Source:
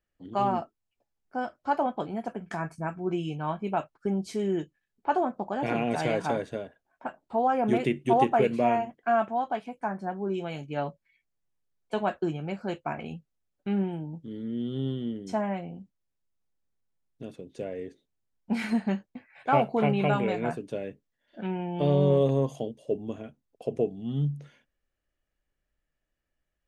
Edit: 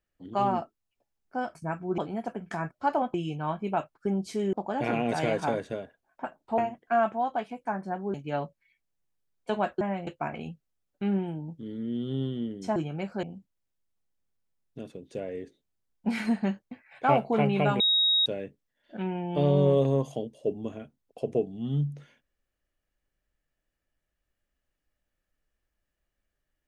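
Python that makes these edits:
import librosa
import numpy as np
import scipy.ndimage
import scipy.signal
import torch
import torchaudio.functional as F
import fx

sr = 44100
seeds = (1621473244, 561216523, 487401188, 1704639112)

y = fx.edit(x, sr, fx.swap(start_s=1.55, length_s=0.43, other_s=2.71, other_length_s=0.43),
    fx.cut(start_s=4.53, length_s=0.82),
    fx.cut(start_s=7.4, length_s=1.34),
    fx.cut(start_s=10.3, length_s=0.28),
    fx.swap(start_s=12.25, length_s=0.47, other_s=15.41, other_length_s=0.26),
    fx.bleep(start_s=20.24, length_s=0.46, hz=3780.0, db=-20.0), tone=tone)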